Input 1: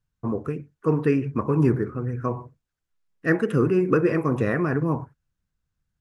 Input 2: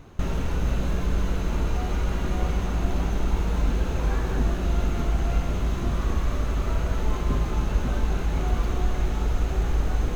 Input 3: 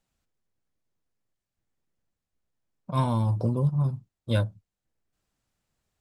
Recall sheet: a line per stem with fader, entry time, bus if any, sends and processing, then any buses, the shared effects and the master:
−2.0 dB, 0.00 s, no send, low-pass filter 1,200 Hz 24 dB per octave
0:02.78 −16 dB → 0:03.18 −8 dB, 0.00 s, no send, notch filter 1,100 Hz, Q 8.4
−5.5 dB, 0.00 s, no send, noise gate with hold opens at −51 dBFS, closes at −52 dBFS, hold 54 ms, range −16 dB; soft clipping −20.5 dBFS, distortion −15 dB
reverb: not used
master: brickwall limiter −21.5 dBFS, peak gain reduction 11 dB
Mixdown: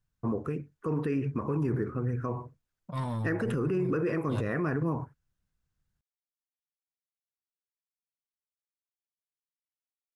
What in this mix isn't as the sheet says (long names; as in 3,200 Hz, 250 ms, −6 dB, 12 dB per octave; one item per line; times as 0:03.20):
stem 1: missing low-pass filter 1,200 Hz 24 dB per octave
stem 2: muted